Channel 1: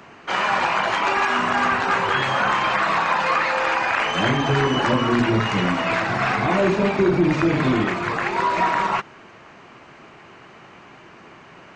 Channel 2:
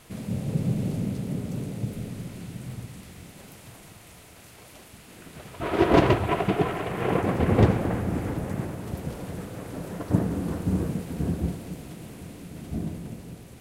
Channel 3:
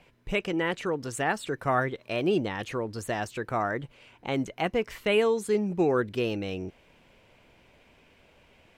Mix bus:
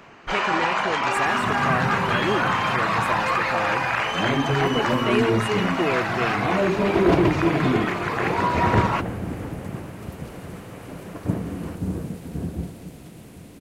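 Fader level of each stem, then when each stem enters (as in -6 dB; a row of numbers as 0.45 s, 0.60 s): -2.5 dB, -2.0 dB, -0.5 dB; 0.00 s, 1.15 s, 0.00 s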